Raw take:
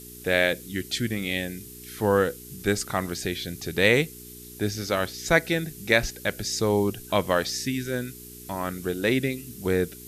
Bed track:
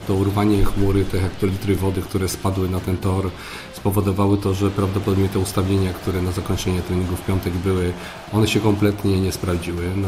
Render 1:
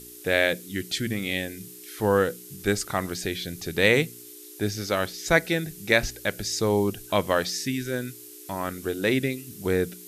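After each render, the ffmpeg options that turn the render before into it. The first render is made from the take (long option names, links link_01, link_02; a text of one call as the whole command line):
ffmpeg -i in.wav -af "bandreject=frequency=60:width_type=h:width=4,bandreject=frequency=120:width_type=h:width=4,bandreject=frequency=180:width_type=h:width=4,bandreject=frequency=240:width_type=h:width=4" out.wav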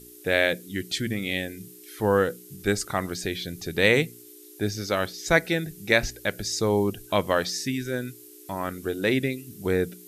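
ffmpeg -i in.wav -af "afftdn=noise_reduction=6:noise_floor=-45" out.wav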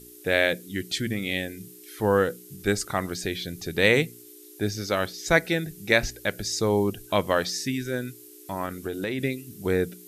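ffmpeg -i in.wav -filter_complex "[0:a]asplit=3[link_01][link_02][link_03];[link_01]afade=type=out:start_time=8.65:duration=0.02[link_04];[link_02]acompressor=threshold=-25dB:ratio=6:attack=3.2:release=140:knee=1:detection=peak,afade=type=in:start_time=8.65:duration=0.02,afade=type=out:start_time=9.18:duration=0.02[link_05];[link_03]afade=type=in:start_time=9.18:duration=0.02[link_06];[link_04][link_05][link_06]amix=inputs=3:normalize=0" out.wav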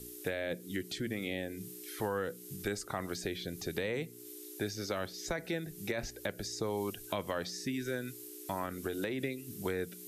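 ffmpeg -i in.wav -filter_complex "[0:a]alimiter=limit=-14.5dB:level=0:latency=1:release=16,acrossover=split=300|1100[link_01][link_02][link_03];[link_01]acompressor=threshold=-43dB:ratio=4[link_04];[link_02]acompressor=threshold=-37dB:ratio=4[link_05];[link_03]acompressor=threshold=-42dB:ratio=4[link_06];[link_04][link_05][link_06]amix=inputs=3:normalize=0" out.wav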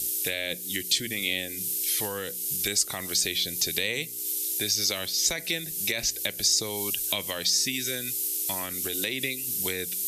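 ffmpeg -i in.wav -af "aexciter=amount=7.9:drive=3:freq=2100" out.wav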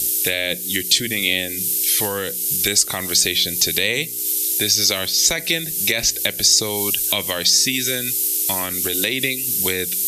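ffmpeg -i in.wav -af "volume=9dB,alimiter=limit=-2dB:level=0:latency=1" out.wav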